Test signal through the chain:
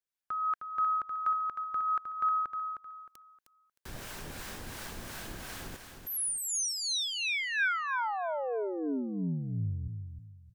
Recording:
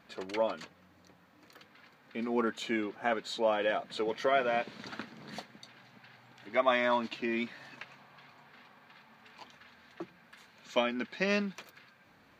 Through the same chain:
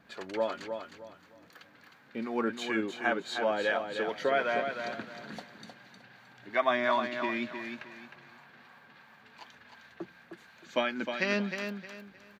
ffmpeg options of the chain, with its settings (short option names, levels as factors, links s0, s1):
-filter_complex "[0:a]acrossover=split=640[s0][s1];[s0]aeval=exprs='val(0)*(1-0.5/2+0.5/2*cos(2*PI*2.8*n/s))':c=same[s2];[s1]aeval=exprs='val(0)*(1-0.5/2-0.5/2*cos(2*PI*2.8*n/s))':c=same[s3];[s2][s3]amix=inputs=2:normalize=0,equalizer=f=1600:t=o:w=0.24:g=6,aecho=1:1:310|620|930|1240:0.447|0.13|0.0376|0.0109,volume=1.26"